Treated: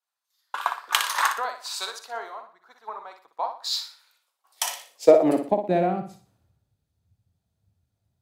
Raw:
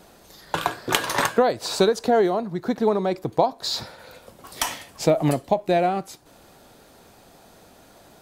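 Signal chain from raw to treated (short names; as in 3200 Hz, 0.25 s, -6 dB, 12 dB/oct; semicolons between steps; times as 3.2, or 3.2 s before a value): high-pass sweep 1100 Hz -> 91 Hz, 4.25–6.43; flutter echo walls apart 10.3 m, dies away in 0.53 s; three-band expander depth 100%; gain -8.5 dB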